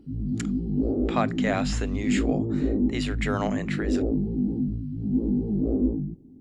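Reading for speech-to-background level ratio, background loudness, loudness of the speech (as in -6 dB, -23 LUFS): -4.5 dB, -27.0 LUFS, -31.5 LUFS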